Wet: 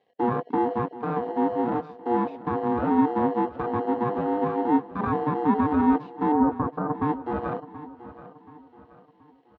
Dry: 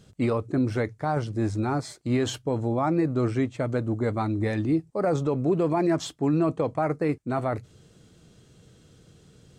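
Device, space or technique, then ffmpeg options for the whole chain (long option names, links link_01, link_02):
ring modulator pedal into a guitar cabinet: -filter_complex "[0:a]aeval=exprs='val(0)*sgn(sin(2*PI*600*n/s))':channel_layout=same,highpass=100,equalizer=frequency=260:width_type=q:width=4:gain=8,equalizer=frequency=520:width_type=q:width=4:gain=4,equalizer=frequency=1400:width_type=q:width=4:gain=-8,lowpass=frequency=3600:width=0.5412,lowpass=frequency=3600:width=1.3066,acrossover=split=2600[link_01][link_02];[link_02]acompressor=threshold=-46dB:ratio=4:attack=1:release=60[link_03];[link_01][link_03]amix=inputs=2:normalize=0,afwtdn=0.0447,asettb=1/sr,asplit=3[link_04][link_05][link_06];[link_04]atrim=end=6.324[link_07];[link_05]atrim=start=6.32:end=7.02,asetpts=PTS-STARTPTS,afade=type=in:duration=0.004:curve=qsin,afade=type=out:start_time=0.696:duration=0.004:curve=qsin,lowpass=frequency=1400:width=0.5412,lowpass=frequency=1400:width=1.3066[link_08];[link_06]atrim=start=7.016[link_09];[link_07][link_08]acrossfade=duration=0.004:curve1=hsin:curve2=qsin[link_10];[link_10][link_09]acrossfade=duration=0.004:curve1=qsin:curve2=hsin,aecho=1:1:728|1456|2184|2912:0.168|0.0688|0.0282|0.0116"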